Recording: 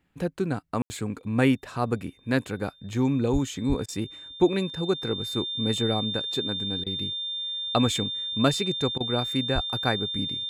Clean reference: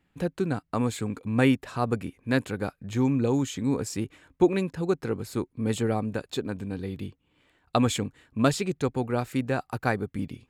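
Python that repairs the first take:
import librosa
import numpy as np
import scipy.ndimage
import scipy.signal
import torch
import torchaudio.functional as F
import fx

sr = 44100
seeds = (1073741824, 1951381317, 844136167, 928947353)

y = fx.notch(x, sr, hz=3600.0, q=30.0)
y = fx.highpass(y, sr, hz=140.0, slope=24, at=(3.32, 3.44), fade=0.02)
y = fx.highpass(y, sr, hz=140.0, slope=24, at=(3.68, 3.8), fade=0.02)
y = fx.highpass(y, sr, hz=140.0, slope=24, at=(9.54, 9.66), fade=0.02)
y = fx.fix_ambience(y, sr, seeds[0], print_start_s=1.99, print_end_s=2.49, start_s=0.82, end_s=0.9)
y = fx.fix_interpolate(y, sr, at_s=(3.86, 6.84, 8.98), length_ms=23.0)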